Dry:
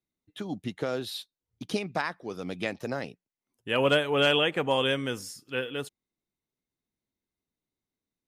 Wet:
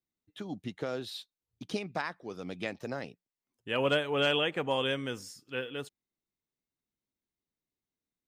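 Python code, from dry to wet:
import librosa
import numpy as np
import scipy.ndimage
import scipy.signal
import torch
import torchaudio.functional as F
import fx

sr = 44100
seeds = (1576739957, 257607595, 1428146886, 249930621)

y = fx.peak_eq(x, sr, hz=11000.0, db=-10.0, octaves=0.3)
y = y * librosa.db_to_amplitude(-4.5)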